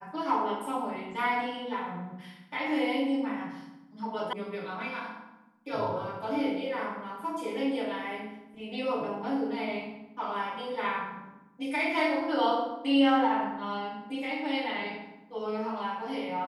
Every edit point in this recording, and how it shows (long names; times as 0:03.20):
0:04.33: cut off before it has died away